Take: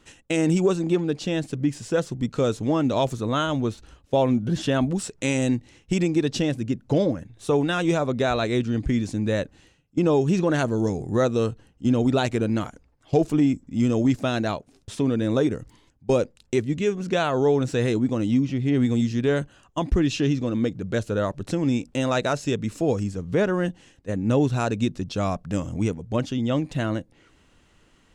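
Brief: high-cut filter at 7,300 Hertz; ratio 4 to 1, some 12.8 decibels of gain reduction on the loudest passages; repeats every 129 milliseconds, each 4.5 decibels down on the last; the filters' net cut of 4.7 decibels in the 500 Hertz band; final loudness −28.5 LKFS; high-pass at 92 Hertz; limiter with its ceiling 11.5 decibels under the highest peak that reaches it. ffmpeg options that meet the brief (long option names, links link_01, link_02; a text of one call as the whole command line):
ffmpeg -i in.wav -af "highpass=92,lowpass=7300,equalizer=frequency=500:width_type=o:gain=-6,acompressor=threshold=-34dB:ratio=4,alimiter=level_in=5dB:limit=-24dB:level=0:latency=1,volume=-5dB,aecho=1:1:129|258|387|516|645|774|903|1032|1161:0.596|0.357|0.214|0.129|0.0772|0.0463|0.0278|0.0167|0.01,volume=8.5dB" out.wav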